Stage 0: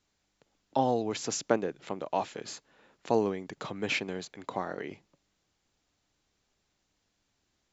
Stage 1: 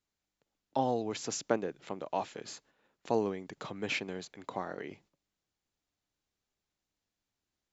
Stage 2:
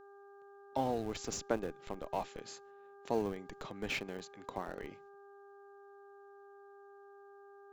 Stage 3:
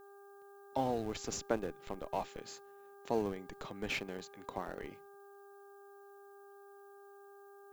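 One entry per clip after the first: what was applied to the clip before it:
gate -59 dBFS, range -8 dB; gain -3.5 dB
buzz 400 Hz, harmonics 4, -52 dBFS -6 dB/oct; in parallel at -5.5 dB: Schmitt trigger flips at -32 dBFS; on the sum: gain -4.5 dB
added noise violet -73 dBFS

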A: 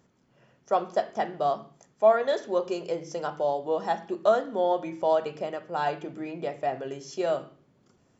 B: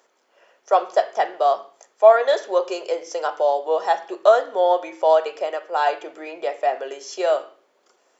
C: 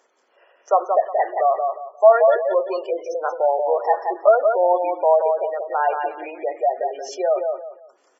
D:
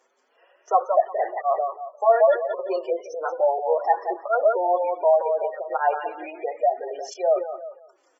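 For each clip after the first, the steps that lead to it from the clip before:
HPF 450 Hz 24 dB/oct; gain +8 dB
feedback echo 0.177 s, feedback 26%, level -5 dB; spectral gate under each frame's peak -20 dB strong
tape flanging out of phase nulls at 0.35 Hz, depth 7.1 ms

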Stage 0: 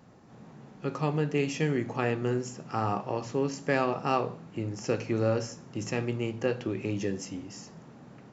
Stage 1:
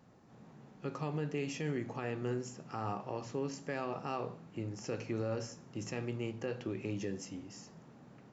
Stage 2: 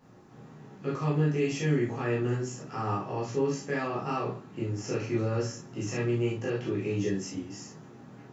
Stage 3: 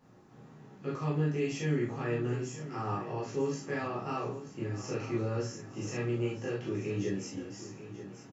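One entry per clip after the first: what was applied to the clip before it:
limiter -20.5 dBFS, peak gain reduction 7.5 dB; gain -6.5 dB
reverb, pre-delay 8 ms, DRR -6.5 dB
feedback echo 0.934 s, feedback 37%, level -13 dB; gain -4 dB

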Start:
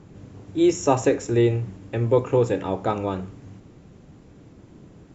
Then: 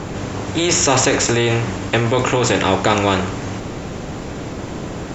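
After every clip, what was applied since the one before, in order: in parallel at -0.5 dB: negative-ratio compressor -23 dBFS, ratio -0.5; on the sum: spectral compressor 2:1; gain +3.5 dB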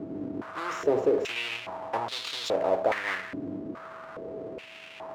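half-waves squared off; whine 650 Hz -24 dBFS; stepped band-pass 2.4 Hz 300–3800 Hz; gain -6 dB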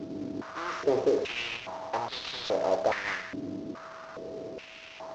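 CVSD 32 kbps; gain -1 dB

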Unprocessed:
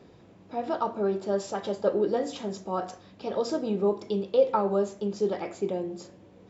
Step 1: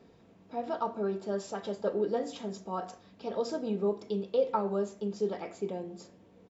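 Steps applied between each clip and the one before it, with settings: comb 4.4 ms, depth 31%; gain -5.5 dB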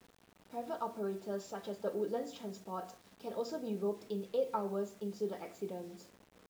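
bit-crush 9-bit; gain -6 dB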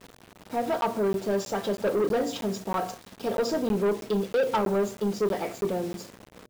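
buzz 120 Hz, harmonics 5, -69 dBFS; sample leveller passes 3; crackling interface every 0.32 s, samples 512, zero, from 0.81; gain +4 dB

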